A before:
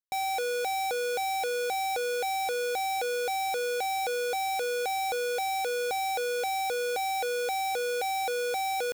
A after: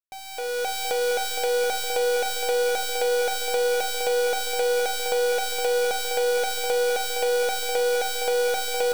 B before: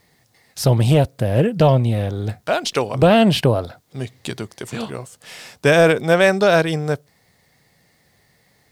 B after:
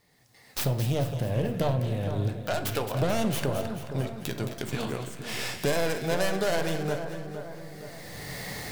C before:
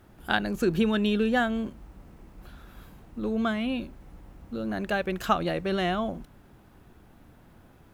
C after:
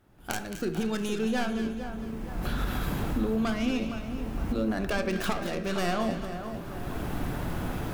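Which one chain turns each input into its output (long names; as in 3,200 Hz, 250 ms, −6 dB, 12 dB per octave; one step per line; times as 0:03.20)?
stylus tracing distortion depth 0.37 ms
camcorder AGC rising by 21 dB per second
hum removal 77.12 Hz, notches 31
downward compressor 4 to 1, threshold −16 dBFS
echo with a time of its own for lows and highs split 1,600 Hz, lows 464 ms, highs 218 ms, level −9 dB
rectangular room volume 330 cubic metres, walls mixed, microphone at 0.36 metres
level −8.5 dB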